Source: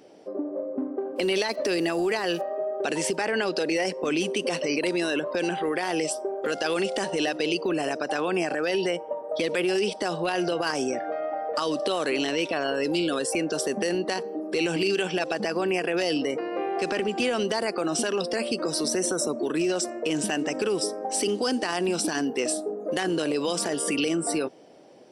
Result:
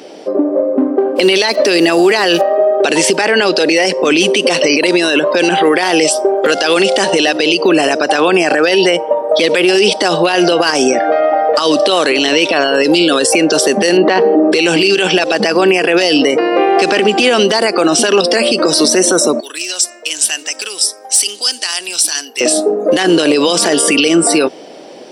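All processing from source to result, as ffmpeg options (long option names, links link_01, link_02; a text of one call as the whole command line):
ffmpeg -i in.wav -filter_complex "[0:a]asettb=1/sr,asplit=3[link_01][link_02][link_03];[link_01]atrim=end=13.974[link_04];[link_02]atrim=start=13.97:end=14.52,asetpts=PTS-STARTPTS,afade=type=in:duration=0.004:curve=qsin,afade=type=out:start_time=0.546:duration=0.004:curve=qsin,highpass=120,lowpass=2200,acontrast=86[link_05];[link_03]atrim=start=14.516[link_06];[link_04][link_05]acrossfade=duration=0.004:curve1=hsin:curve2=qsin[link_07];[link_07][link_06]acrossfade=duration=0.004:curve1=qsin:curve2=hsin,asettb=1/sr,asplit=3[link_08][link_09][link_10];[link_08]atrim=end=19.404[link_11];[link_09]atrim=start=19.4:end=22.41,asetpts=PTS-STARTPTS,afade=type=in:duration=0.004:curve=qsin,afade=type=out:start_time=3.006:duration=0.004:curve=qsin,aderivative,asoftclip=type=hard:threshold=-20dB[link_12];[link_10]atrim=start=22.406[link_13];[link_11][link_12]acrossfade=duration=0.004:curve1=hsin:curve2=qsin[link_14];[link_14][link_13]acrossfade=duration=0.004:curve1=qsin:curve2=hsin,highpass=200,equalizer=frequency=3700:width_type=o:width=1.5:gain=5,alimiter=level_in=19dB:limit=-1dB:release=50:level=0:latency=1,volume=-1dB" out.wav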